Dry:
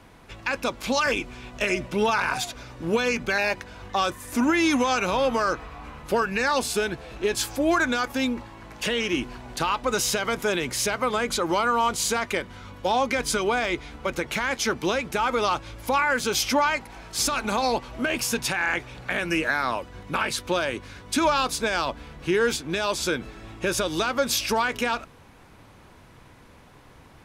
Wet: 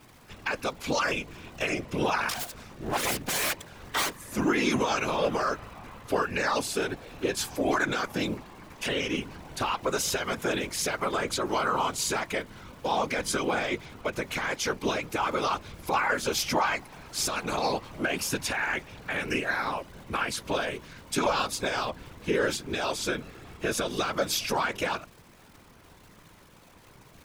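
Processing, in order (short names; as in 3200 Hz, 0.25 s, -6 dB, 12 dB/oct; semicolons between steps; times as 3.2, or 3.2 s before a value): 2.29–4.17 self-modulated delay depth 0.97 ms; crackle 270/s -39 dBFS; whisperiser; gain -4 dB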